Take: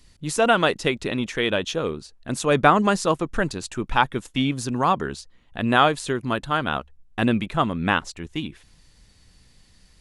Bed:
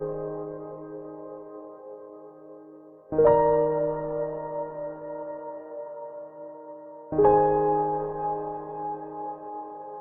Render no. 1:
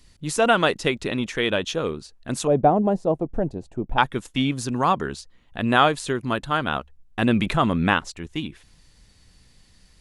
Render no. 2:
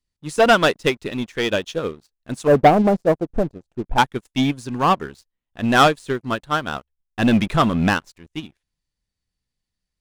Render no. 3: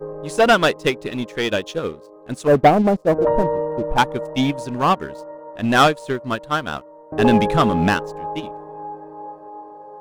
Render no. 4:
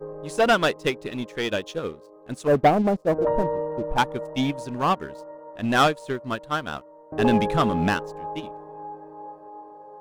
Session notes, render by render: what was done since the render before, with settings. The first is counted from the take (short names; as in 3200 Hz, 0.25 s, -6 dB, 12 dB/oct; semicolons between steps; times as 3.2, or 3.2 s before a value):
2.47–3.98 EQ curve 490 Hz 0 dB, 730 Hz +3 dB, 1200 Hz -18 dB, 5600 Hz -24 dB; 7.28–7.94 fast leveller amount 50%
sample leveller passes 3; upward expander 2.5:1, over -21 dBFS
add bed 0 dB
gain -5 dB